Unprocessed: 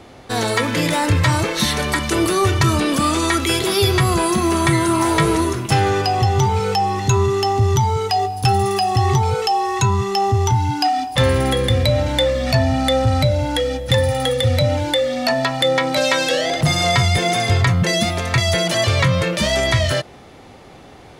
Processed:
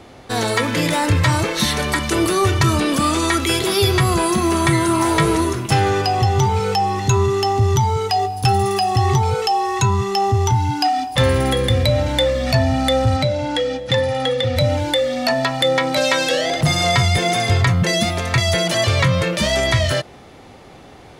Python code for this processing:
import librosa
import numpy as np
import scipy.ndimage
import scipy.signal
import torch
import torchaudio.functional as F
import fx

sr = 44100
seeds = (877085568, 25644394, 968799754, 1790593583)

y = fx.bandpass_edges(x, sr, low_hz=140.0, high_hz=fx.line((13.16, 7500.0), (14.55, 4900.0)), at=(13.16, 14.55), fade=0.02)